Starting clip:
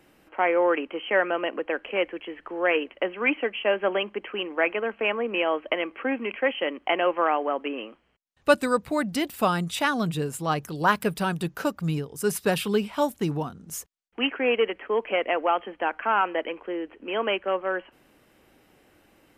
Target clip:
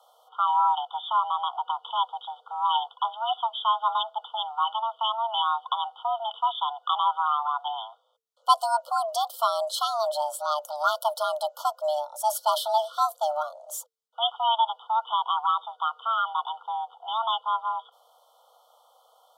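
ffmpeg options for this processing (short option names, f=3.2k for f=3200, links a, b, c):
-af "afftfilt=real='re*(1-between(b*sr/4096,1000,2500))':imag='im*(1-between(b*sr/4096,1000,2500))':win_size=4096:overlap=0.75,adynamicequalizer=threshold=0.00251:dfrequency=4100:dqfactor=5.3:tfrequency=4100:tqfactor=5.3:attack=5:release=100:ratio=0.375:range=2:mode=boostabove:tftype=bell,afreqshift=450"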